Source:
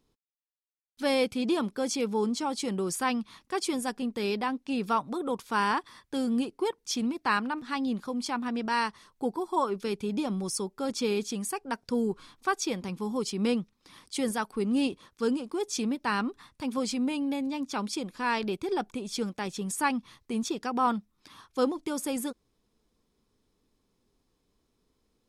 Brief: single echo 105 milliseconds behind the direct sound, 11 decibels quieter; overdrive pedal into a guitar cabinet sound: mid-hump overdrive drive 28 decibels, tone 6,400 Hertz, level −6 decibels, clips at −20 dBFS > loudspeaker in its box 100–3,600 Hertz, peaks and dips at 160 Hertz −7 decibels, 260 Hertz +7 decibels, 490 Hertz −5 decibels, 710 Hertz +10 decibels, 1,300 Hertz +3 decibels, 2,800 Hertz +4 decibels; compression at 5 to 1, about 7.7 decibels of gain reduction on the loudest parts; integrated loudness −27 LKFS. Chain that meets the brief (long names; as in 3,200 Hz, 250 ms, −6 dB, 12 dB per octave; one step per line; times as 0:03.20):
downward compressor 5 to 1, threshold −30 dBFS
single-tap delay 105 ms −11 dB
mid-hump overdrive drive 28 dB, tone 6,400 Hz, level −6 dB, clips at −20 dBFS
loudspeaker in its box 100–3,600 Hz, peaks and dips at 160 Hz −7 dB, 260 Hz +7 dB, 490 Hz −5 dB, 710 Hz +10 dB, 1,300 Hz +3 dB, 2,800 Hz +4 dB
level −1.5 dB